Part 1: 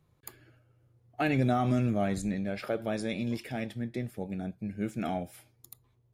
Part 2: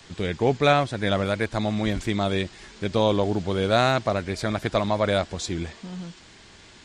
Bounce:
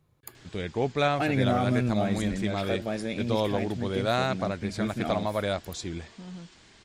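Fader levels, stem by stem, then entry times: +1.0 dB, -6.0 dB; 0.00 s, 0.35 s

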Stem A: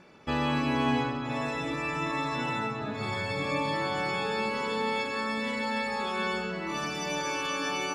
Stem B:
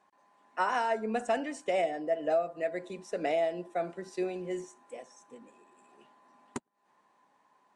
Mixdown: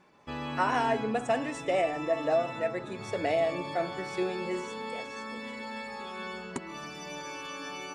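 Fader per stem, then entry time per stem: -8.5 dB, +1.5 dB; 0.00 s, 0.00 s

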